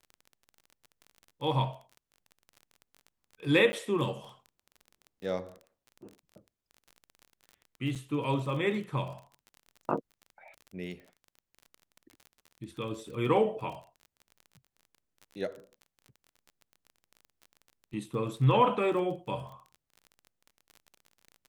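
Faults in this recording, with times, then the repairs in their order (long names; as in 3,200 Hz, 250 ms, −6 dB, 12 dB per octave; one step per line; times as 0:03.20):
surface crackle 26 per second −40 dBFS
0:03.72–0:03.73: drop-out 10 ms
0:07.95–0:07.96: drop-out 6.6 ms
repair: click removal
repair the gap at 0:03.72, 10 ms
repair the gap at 0:07.95, 6.6 ms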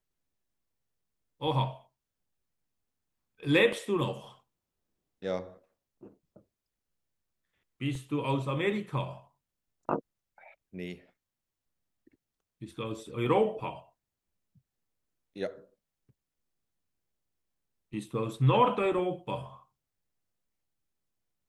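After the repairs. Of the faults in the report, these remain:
none of them is left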